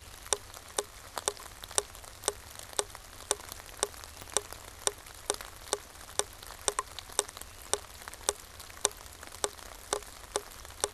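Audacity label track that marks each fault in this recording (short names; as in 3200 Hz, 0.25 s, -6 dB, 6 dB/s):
4.220000	4.220000	pop -23 dBFS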